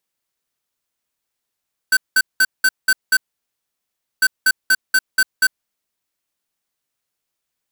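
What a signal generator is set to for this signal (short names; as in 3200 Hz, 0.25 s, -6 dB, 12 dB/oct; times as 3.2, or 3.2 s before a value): beep pattern square 1530 Hz, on 0.05 s, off 0.19 s, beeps 6, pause 1.05 s, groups 2, -13 dBFS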